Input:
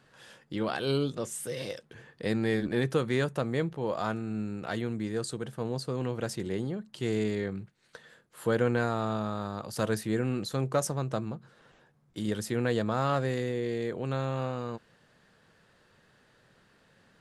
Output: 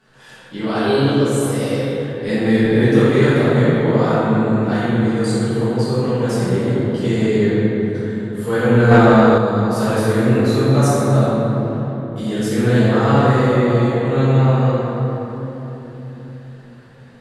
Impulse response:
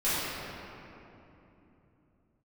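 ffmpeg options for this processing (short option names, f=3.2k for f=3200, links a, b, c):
-filter_complex "[1:a]atrim=start_sample=2205,asetrate=34839,aresample=44100[a];[0:a][a]afir=irnorm=-1:irlink=0,asettb=1/sr,asplit=3[b][c][d];[b]atrim=end=8.914[e];[c]atrim=start=8.91:end=9.38,asetpts=PTS-STARTPTS,afade=t=in:d=0.004:c=qsin,afade=t=out:st=0.466:d=0.004:c=qsin,acontrast=61[f];[d]atrim=start=9.376[g];[e][f]acrossfade=d=0.004:c1=hsin:c2=qsin[h];[h][g]acrossfade=d=0.004:c1=qsin:c2=hsin,volume=-1dB"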